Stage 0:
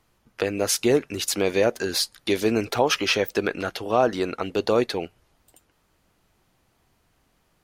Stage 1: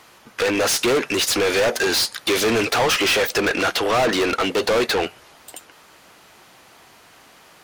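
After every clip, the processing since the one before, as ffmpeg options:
-filter_complex "[0:a]asplit=2[s0][s1];[s1]highpass=f=720:p=1,volume=44.7,asoftclip=type=tanh:threshold=0.473[s2];[s0][s2]amix=inputs=2:normalize=0,lowpass=f=7200:p=1,volume=0.501,volume=0.562"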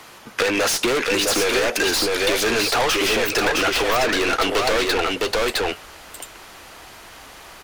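-filter_complex "[0:a]aecho=1:1:660:0.631,acrossover=split=120|1100[s0][s1][s2];[s0]acompressor=threshold=0.00355:ratio=4[s3];[s1]acompressor=threshold=0.0447:ratio=4[s4];[s2]acompressor=threshold=0.0447:ratio=4[s5];[s3][s4][s5]amix=inputs=3:normalize=0,asubboost=boost=7:cutoff=54,volume=2"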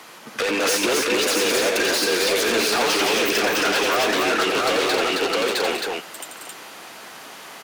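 -filter_complex "[0:a]highpass=f=150:w=0.5412,highpass=f=150:w=1.3066,asoftclip=type=tanh:threshold=0.133,asplit=2[s0][s1];[s1]aecho=0:1:87.46|227.4|268.2:0.501|0.282|0.708[s2];[s0][s2]amix=inputs=2:normalize=0"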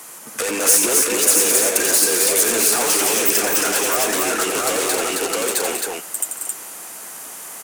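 -af "highshelf=f=5900:t=q:w=1.5:g=13.5,volume=0.891"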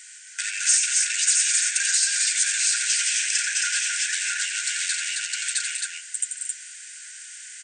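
-af "afftfilt=real='re*between(b*sr/4096,1400,9000)':imag='im*between(b*sr/4096,1400,9000)':win_size=4096:overlap=0.75,volume=0.794"

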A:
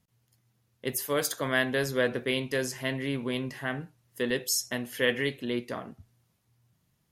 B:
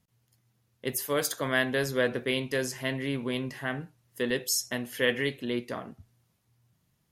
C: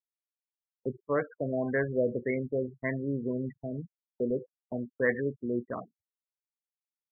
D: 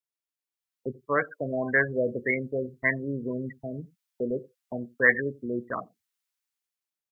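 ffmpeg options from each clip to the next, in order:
-af anull
-af "afftfilt=real='re*gte(hypot(re,im),0.0282)':imag='im*gte(hypot(re,im),0.0282)':win_size=1024:overlap=0.75,agate=range=0.00398:threshold=0.0112:ratio=16:detection=peak,afftfilt=real='re*lt(b*sr/1024,630*pow(2300/630,0.5+0.5*sin(2*PI*1.8*pts/sr)))':imag='im*lt(b*sr/1024,630*pow(2300/630,0.5+0.5*sin(2*PI*1.8*pts/sr)))':win_size=1024:overlap=0.75"
-filter_complex "[0:a]acrossover=split=1100[s0][s1];[s0]aecho=1:1:88:0.0794[s2];[s1]dynaudnorm=f=250:g=7:m=3.98[s3];[s2][s3]amix=inputs=2:normalize=0"

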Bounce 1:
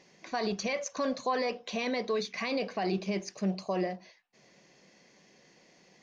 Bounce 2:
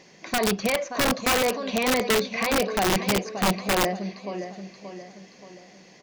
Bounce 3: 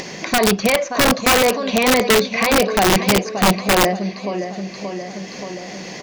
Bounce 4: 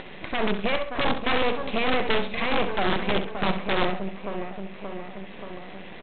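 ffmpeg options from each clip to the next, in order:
-filter_complex "[0:a]aecho=1:1:578|1156|1734|2312|2890:0.299|0.131|0.0578|0.0254|0.0112,acrossover=split=3500[s0][s1];[s1]acompressor=threshold=0.00251:ratio=4:attack=1:release=60[s2];[s0][s2]amix=inputs=2:normalize=0,aeval=exprs='(mod(15.8*val(0)+1,2)-1)/15.8':c=same,volume=2.66"
-af "acompressor=mode=upward:threshold=0.0398:ratio=2.5,volume=2.51"
-af "aresample=8000,aeval=exprs='max(val(0),0)':c=same,aresample=44100,aecho=1:1:66|132|198:0.316|0.0885|0.0248,volume=0.562"

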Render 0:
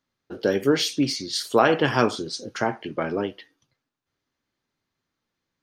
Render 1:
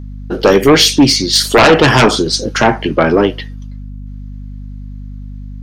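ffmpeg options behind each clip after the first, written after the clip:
-af "aeval=exprs='0.631*sin(PI/2*3.55*val(0)/0.631)':c=same,aeval=exprs='val(0)+0.0398*(sin(2*PI*50*n/s)+sin(2*PI*2*50*n/s)/2+sin(2*PI*3*50*n/s)/3+sin(2*PI*4*50*n/s)/4+sin(2*PI*5*50*n/s)/5)':c=same,volume=1.26"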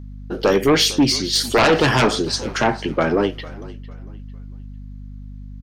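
-filter_complex "[0:a]asplit=4[s0][s1][s2][s3];[s1]adelay=451,afreqshift=-42,volume=0.112[s4];[s2]adelay=902,afreqshift=-84,volume=0.0359[s5];[s3]adelay=1353,afreqshift=-126,volume=0.0115[s6];[s0][s4][s5][s6]amix=inputs=4:normalize=0,volume=0.422"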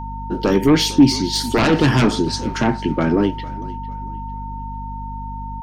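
-af "lowshelf=f=380:t=q:w=1.5:g=7,aeval=exprs='val(0)+0.0447*sin(2*PI*910*n/s)':c=same,volume=0.708"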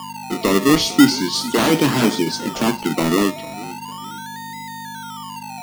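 -filter_complex "[0:a]highpass=f=160:w=0.5412,highpass=f=160:w=1.3066,acrossover=split=2200[s0][s1];[s0]acrusher=samples=22:mix=1:aa=0.000001:lfo=1:lforange=13.2:lforate=0.38[s2];[s2][s1]amix=inputs=2:normalize=0"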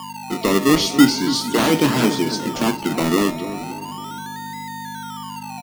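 -filter_complex "[0:a]asplit=2[s0][s1];[s1]adelay=280,lowpass=f=980:p=1,volume=0.299,asplit=2[s2][s3];[s3]adelay=280,lowpass=f=980:p=1,volume=0.44,asplit=2[s4][s5];[s5]adelay=280,lowpass=f=980:p=1,volume=0.44,asplit=2[s6][s7];[s7]adelay=280,lowpass=f=980:p=1,volume=0.44,asplit=2[s8][s9];[s9]adelay=280,lowpass=f=980:p=1,volume=0.44[s10];[s0][s2][s4][s6][s8][s10]amix=inputs=6:normalize=0,volume=0.891"

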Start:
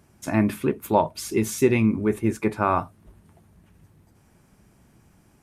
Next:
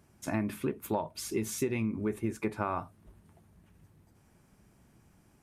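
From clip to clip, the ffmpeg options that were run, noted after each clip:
-af "acompressor=threshold=0.0794:ratio=6,volume=0.531"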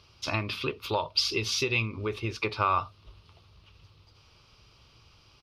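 -af "firequalizer=gain_entry='entry(110,0);entry(190,-15);entry(480,0);entry(710,-6);entry(1200,7);entry(1700,-7);entry(2700,13);entry(4900,15);entry(7400,-14)':delay=0.05:min_phase=1,volume=1.88"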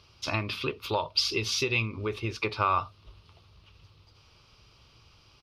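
-af anull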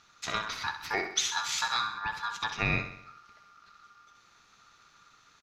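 -af "aeval=exprs='val(0)*sin(2*PI*1300*n/s)':c=same,aecho=1:1:65|130|195|260|325|390:0.316|0.168|0.0888|0.0471|0.025|0.0132"

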